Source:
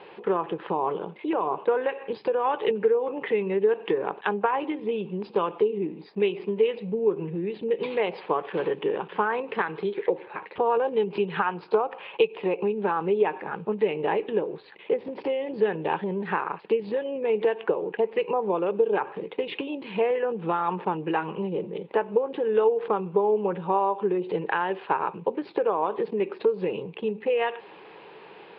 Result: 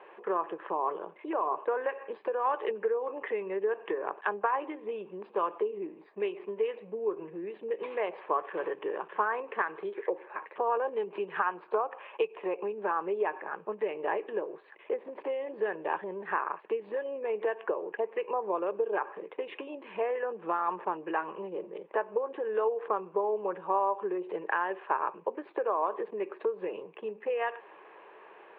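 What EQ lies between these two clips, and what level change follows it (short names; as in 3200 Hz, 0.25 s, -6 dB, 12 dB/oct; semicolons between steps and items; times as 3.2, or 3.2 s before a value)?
speaker cabinet 330–2900 Hz, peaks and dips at 350 Hz +4 dB, 620 Hz +8 dB, 1100 Hz +9 dB, 1700 Hz +7 dB; -9.0 dB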